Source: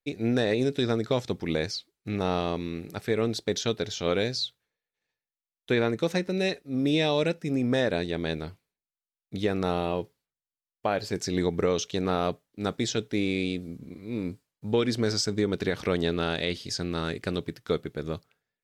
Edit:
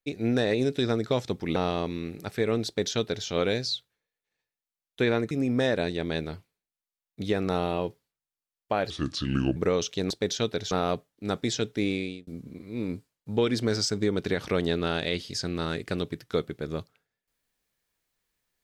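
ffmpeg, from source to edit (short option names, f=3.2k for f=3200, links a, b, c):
-filter_complex "[0:a]asplit=8[a][b][c][d][e][f][g][h];[a]atrim=end=1.562[i];[b]atrim=start=2.258:end=6.012[j];[c]atrim=start=7.448:end=11.044[k];[d]atrim=start=11.04:end=11.53,asetpts=PTS-STARTPTS,asetrate=32634,aresample=44100,atrim=end_sample=29201,asetpts=PTS-STARTPTS[l];[e]atrim=start=11.526:end=12.072[m];[f]atrim=start=3.358:end=3.972[n];[g]atrim=start=12.068:end=13.63,asetpts=PTS-STARTPTS,afade=t=out:st=1.182:d=0.38[o];[h]atrim=start=13.63,asetpts=PTS-STARTPTS,afade=t=in:d=0.004:c=hsin[p];[i][j]acrossfade=d=0.004:c1=hsin:c2=hsin[q];[q][k]acrossfade=d=0.004:c1=hsin:c2=hsin[r];[r][l]acrossfade=d=0.004:c1=hsin:c2=hsin[s];[s][m]acrossfade=d=0.004:c1=hsin:c2=hsin[t];[t][n]acrossfade=d=0.004:c1=hsin:c2=hsin[u];[o][p]concat=n=2:v=0:a=1[v];[u][v]acrossfade=d=0.004:c1=hsin:c2=hsin"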